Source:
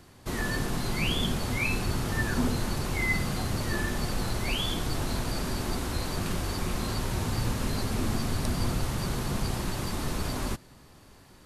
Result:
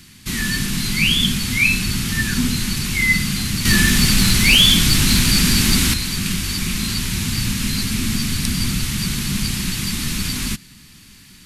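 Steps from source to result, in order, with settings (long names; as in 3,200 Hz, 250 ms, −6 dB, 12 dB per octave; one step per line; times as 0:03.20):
drawn EQ curve 120 Hz 0 dB, 200 Hz +7 dB, 590 Hz −19 dB, 2,300 Hz +9 dB
0:03.65–0:05.94: sine wavefolder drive 4 dB, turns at −11 dBFS
level +5.5 dB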